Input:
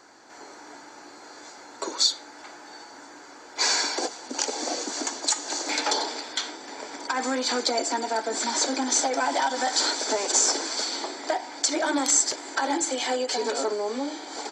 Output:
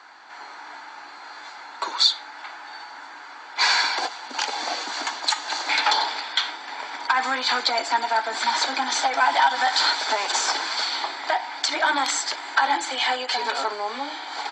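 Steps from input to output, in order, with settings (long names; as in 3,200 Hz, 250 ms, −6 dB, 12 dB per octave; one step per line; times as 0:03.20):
flat-topped bell 1,800 Hz +16 dB 2.9 octaves
level −8 dB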